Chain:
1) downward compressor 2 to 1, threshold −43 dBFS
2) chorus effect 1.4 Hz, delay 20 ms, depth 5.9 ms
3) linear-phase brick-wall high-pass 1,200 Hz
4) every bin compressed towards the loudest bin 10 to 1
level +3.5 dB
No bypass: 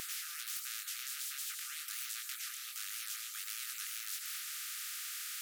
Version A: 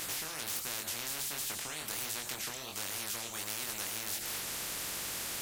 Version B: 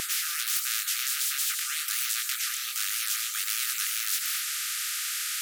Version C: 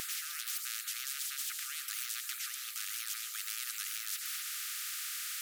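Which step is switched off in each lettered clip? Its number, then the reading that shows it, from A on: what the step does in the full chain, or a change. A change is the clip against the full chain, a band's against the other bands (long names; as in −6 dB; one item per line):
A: 3, 1 kHz band +5.0 dB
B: 1, average gain reduction 8.0 dB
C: 2, change in integrated loudness +3.0 LU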